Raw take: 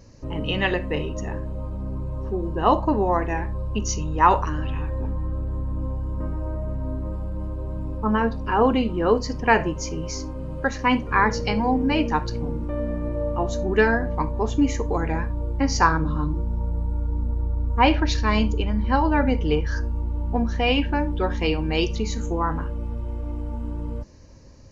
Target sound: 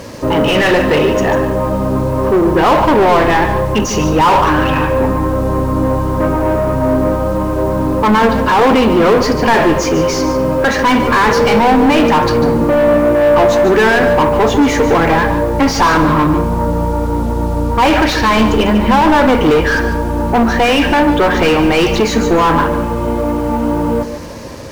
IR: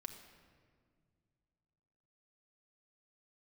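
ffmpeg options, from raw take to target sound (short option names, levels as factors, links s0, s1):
-filter_complex "[0:a]asplit=2[s0][s1];[s1]highpass=f=720:p=1,volume=56.2,asoftclip=type=tanh:threshold=0.668[s2];[s0][s2]amix=inputs=2:normalize=0,lowpass=f=1400:p=1,volume=0.501,acrusher=bits=5:mix=0:aa=0.5,asplit=2[s3][s4];[1:a]atrim=start_sample=2205,adelay=145[s5];[s4][s5]afir=irnorm=-1:irlink=0,volume=0.531[s6];[s3][s6]amix=inputs=2:normalize=0,volume=1.19"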